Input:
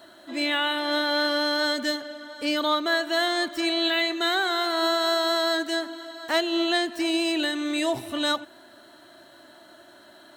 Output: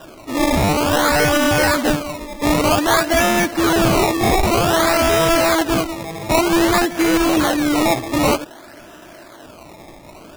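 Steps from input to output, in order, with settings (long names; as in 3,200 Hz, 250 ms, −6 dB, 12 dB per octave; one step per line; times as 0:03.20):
in parallel at −4.5 dB: wrap-around overflow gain 19 dB
on the sum: sample-and-hold swept by an LFO 20×, swing 100% 0.53 Hz
level +6.5 dB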